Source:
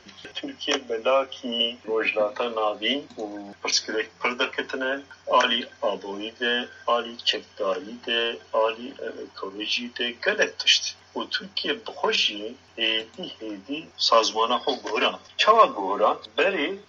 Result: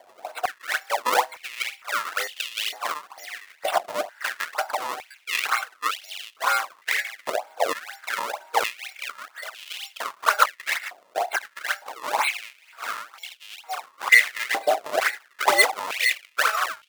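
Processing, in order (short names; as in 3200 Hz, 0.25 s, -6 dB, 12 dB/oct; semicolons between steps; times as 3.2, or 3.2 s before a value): band inversion scrambler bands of 1000 Hz; high shelf 3600 Hz -11.5 dB; 11.87–13.36 transient shaper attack -11 dB, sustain +3 dB; decimation with a swept rate 33×, swing 160% 2.1 Hz; stepped high-pass 2.2 Hz 710–2900 Hz; gain +1 dB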